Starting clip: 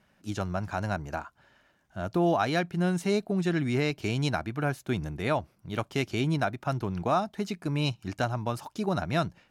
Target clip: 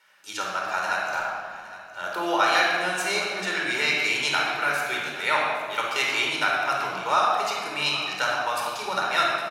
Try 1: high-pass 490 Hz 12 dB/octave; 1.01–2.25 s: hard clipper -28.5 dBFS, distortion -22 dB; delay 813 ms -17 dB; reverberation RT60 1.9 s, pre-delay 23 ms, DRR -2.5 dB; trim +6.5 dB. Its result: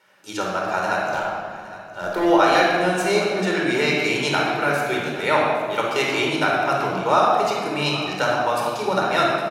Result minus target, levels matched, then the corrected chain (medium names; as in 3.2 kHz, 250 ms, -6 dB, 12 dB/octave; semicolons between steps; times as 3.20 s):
500 Hz band +6.5 dB
high-pass 1.1 kHz 12 dB/octave; 1.01–2.25 s: hard clipper -28.5 dBFS, distortion -38 dB; delay 813 ms -17 dB; reverberation RT60 1.9 s, pre-delay 23 ms, DRR -2.5 dB; trim +6.5 dB